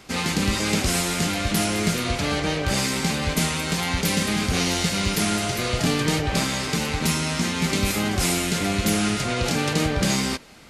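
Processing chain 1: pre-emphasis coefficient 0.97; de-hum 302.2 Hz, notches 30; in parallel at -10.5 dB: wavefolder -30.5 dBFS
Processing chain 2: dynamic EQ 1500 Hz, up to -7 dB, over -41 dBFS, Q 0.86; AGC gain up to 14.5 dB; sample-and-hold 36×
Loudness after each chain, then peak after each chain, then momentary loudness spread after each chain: -27.5, -16.0 LUFS; -13.5, -1.5 dBFS; 4, 4 LU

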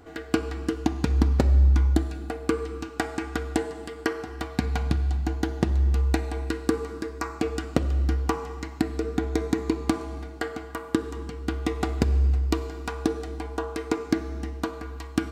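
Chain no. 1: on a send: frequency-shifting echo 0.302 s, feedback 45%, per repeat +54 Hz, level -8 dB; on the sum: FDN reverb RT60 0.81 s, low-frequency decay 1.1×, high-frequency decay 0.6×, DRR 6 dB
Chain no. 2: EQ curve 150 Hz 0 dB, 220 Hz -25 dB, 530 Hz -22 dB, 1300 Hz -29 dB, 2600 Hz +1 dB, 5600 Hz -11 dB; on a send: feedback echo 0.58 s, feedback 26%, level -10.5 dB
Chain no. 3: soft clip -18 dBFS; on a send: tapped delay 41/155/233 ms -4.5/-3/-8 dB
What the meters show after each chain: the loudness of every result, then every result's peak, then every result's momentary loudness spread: -25.5, -28.0, -28.5 LUFS; -4.5, -11.0, -12.0 dBFS; 8, 19, 6 LU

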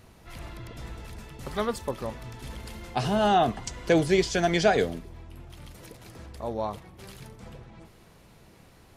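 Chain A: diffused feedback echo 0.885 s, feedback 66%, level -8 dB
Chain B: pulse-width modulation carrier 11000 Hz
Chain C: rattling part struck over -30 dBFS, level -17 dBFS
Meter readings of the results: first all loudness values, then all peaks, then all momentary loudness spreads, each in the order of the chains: -27.5, -27.5, -26.0 LUFS; -9.0, -9.5, -8.0 dBFS; 19, 9, 22 LU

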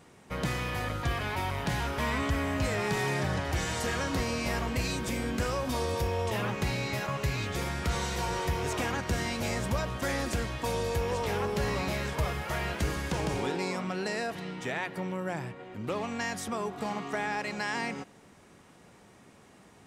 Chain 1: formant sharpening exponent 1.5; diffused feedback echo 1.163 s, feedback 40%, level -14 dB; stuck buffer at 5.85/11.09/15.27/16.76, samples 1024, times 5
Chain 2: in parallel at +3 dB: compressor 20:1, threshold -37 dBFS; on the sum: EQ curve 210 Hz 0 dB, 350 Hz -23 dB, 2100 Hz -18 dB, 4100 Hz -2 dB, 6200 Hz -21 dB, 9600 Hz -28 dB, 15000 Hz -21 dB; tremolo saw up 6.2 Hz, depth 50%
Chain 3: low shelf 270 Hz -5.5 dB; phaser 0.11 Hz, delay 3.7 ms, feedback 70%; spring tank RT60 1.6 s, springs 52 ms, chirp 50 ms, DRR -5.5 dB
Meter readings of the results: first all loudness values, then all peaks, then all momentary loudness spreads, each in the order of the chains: -32.5, -36.0, -25.0 LUFS; -19.5, -18.0, -8.0 dBFS; 6, 7, 6 LU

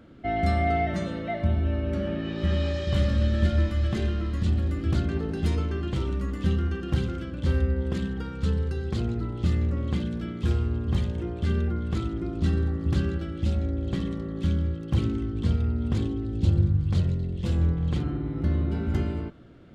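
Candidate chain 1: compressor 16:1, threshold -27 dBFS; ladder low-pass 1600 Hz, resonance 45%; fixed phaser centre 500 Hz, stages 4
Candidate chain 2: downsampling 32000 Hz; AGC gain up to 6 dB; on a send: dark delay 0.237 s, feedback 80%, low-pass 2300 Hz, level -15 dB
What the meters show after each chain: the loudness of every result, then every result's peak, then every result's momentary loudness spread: -45.0, -21.0 LUFS; -31.5, -5.5 dBFS; 3, 5 LU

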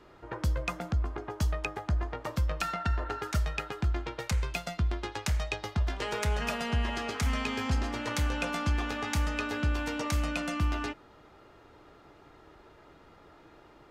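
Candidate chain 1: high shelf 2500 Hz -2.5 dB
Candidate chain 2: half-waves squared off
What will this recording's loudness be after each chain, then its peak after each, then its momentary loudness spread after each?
-32.5, -28.0 LUFS; -19.0, -19.0 dBFS; 4, 4 LU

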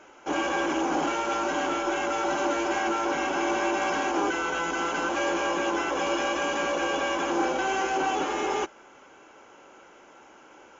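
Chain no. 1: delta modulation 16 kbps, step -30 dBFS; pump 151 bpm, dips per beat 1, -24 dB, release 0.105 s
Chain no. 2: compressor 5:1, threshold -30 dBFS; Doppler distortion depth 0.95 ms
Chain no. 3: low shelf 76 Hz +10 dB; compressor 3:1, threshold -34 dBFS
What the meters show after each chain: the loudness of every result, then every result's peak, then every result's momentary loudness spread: -28.5, -33.0, -34.5 LUFS; -15.0, -21.0, -22.5 dBFS; 10, 19, 17 LU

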